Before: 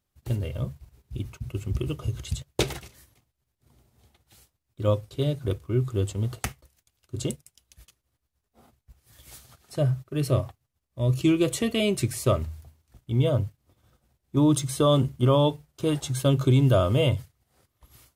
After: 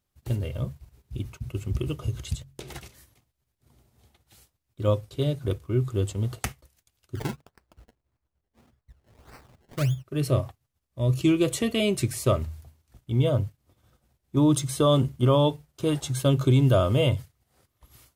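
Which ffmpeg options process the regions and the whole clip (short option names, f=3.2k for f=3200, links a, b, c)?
-filter_complex "[0:a]asettb=1/sr,asplit=3[a][b][c];[a]atrim=end=2.354[d];[b]atrim=start=2.35:end=2.76,asetpts=PTS-STARTPTS,afade=t=in:d=0.004:c=qsin,afade=t=out:st=0.406:d=0.004:c=qsin,bandreject=f=45.14:t=h:w=4,bandreject=f=90.28:t=h:w=4,bandreject=f=135.42:t=h:w=4,bandreject=f=180.56:t=h:w=4,bandreject=f=225.7:t=h:w=4,bandreject=f=270.84:t=h:w=4,bandreject=f=315.98:t=h:w=4,bandreject=f=361.12:t=h:w=4,acompressor=threshold=-35dB:ratio=16:attack=3.2:release=140:knee=1:detection=peak[e];[c]atrim=start=2.756[f];[d][e]acrossfade=d=0.004:c1=hsin:c2=qsin[g];[g][f]acrossfade=d=0.004:c1=qsin:c2=hsin,asettb=1/sr,asplit=3[h][i][j];[h]atrim=end=7.154[k];[i]atrim=start=7.15:end=10.04,asetpts=PTS-STARTPTS,afade=t=in:d=0.004:c=qsin,afade=t=out:st=2.886:d=0.004:c=qsin,lowpass=10k,equalizer=f=1k:t=o:w=2.1:g=-8.5,acrusher=samples=25:mix=1:aa=0.000001:lfo=1:lforange=25:lforate=1.7[l];[j]atrim=start=10.036[m];[k][l]acrossfade=d=0.004:c1=hsin:c2=qsin[n];[n][m]acrossfade=d=0.004:c1=qsin:c2=hsin"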